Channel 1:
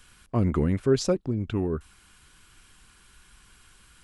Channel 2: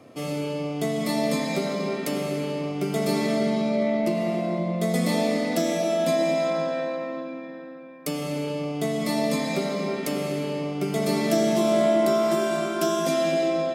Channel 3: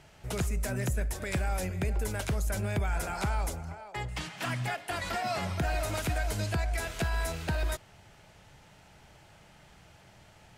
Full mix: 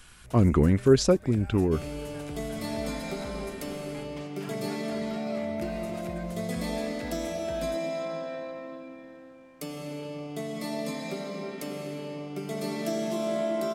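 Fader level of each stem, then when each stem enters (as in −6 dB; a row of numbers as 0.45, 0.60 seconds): +3.0, −8.5, −12.5 decibels; 0.00, 1.55, 0.00 seconds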